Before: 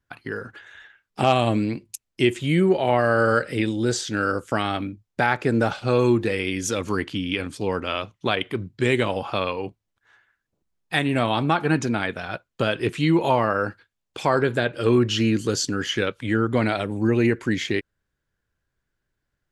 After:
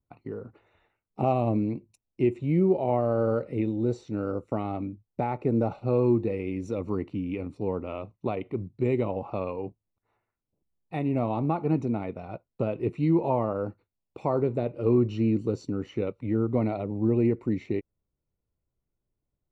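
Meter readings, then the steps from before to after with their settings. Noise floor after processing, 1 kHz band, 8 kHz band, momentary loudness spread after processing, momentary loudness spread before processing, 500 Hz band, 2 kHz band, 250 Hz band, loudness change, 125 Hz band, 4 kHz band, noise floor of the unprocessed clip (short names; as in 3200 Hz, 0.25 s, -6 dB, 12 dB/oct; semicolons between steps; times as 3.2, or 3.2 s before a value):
-85 dBFS, -8.5 dB, under -25 dB, 10 LU, 10 LU, -4.5 dB, -20.5 dB, -3.5 dB, -5.0 dB, -3.0 dB, under -20 dB, -80 dBFS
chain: short-mantissa float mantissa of 4-bit; running mean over 27 samples; gain -3 dB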